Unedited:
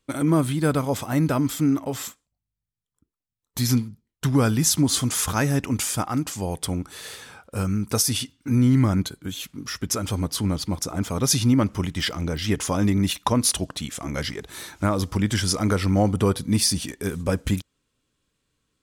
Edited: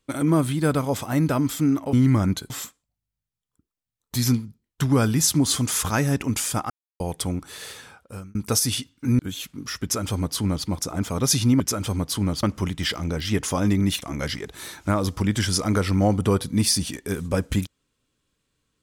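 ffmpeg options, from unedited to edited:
ffmpeg -i in.wav -filter_complex "[0:a]asplit=10[link_01][link_02][link_03][link_04][link_05][link_06][link_07][link_08][link_09][link_10];[link_01]atrim=end=1.932[link_11];[link_02]atrim=start=8.618:end=9.192[link_12];[link_03]atrim=start=1.928:end=6.13,asetpts=PTS-STARTPTS,afade=type=out:start_time=4.198:duration=0.004:curve=hsin[link_13];[link_04]atrim=start=6.13:end=6.43,asetpts=PTS-STARTPTS,volume=0[link_14];[link_05]atrim=start=6.43:end=7.78,asetpts=PTS-STARTPTS,afade=type=in:duration=0.004:curve=hsin,afade=type=out:start_time=0.77:duration=0.58[link_15];[link_06]atrim=start=7.78:end=8.622,asetpts=PTS-STARTPTS,afade=type=in:duration=0.004:curve=hsin[link_16];[link_07]atrim=start=9.188:end=11.602[link_17];[link_08]atrim=start=9.828:end=10.662[link_18];[link_09]atrim=start=11.598:end=13.192[link_19];[link_10]atrim=start=13.968[link_20];[link_11][link_12]acrossfade=duration=0.004:curve1=hsin:curve2=hsin[link_21];[link_13][link_14][link_15][link_16]concat=n=4:v=0:a=1[link_22];[link_21][link_22]acrossfade=duration=0.004:curve1=hsin:curve2=hsin[link_23];[link_23][link_17]acrossfade=duration=0.004:curve1=hsin:curve2=hsin[link_24];[link_24][link_18]acrossfade=duration=0.004:curve1=hsin:curve2=hsin[link_25];[link_25][link_19]acrossfade=duration=0.004:curve1=hsin:curve2=hsin[link_26];[link_26][link_20]acrossfade=duration=0.004:curve1=hsin:curve2=hsin" out.wav

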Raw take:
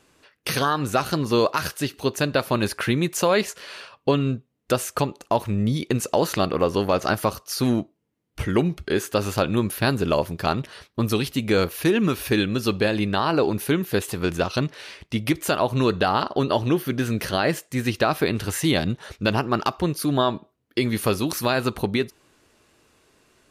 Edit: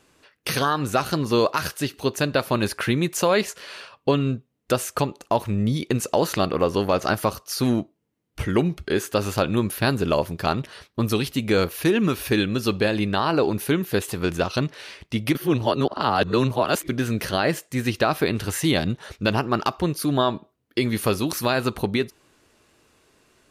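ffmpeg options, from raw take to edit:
ffmpeg -i in.wav -filter_complex "[0:a]asplit=3[link_01][link_02][link_03];[link_01]atrim=end=15.352[link_04];[link_02]atrim=start=15.348:end=16.892,asetpts=PTS-STARTPTS,areverse[link_05];[link_03]atrim=start=16.888[link_06];[link_04][link_05]acrossfade=duration=0.004:curve1=hsin:curve2=hsin[link_07];[link_07][link_06]acrossfade=duration=0.004:curve1=hsin:curve2=hsin" out.wav

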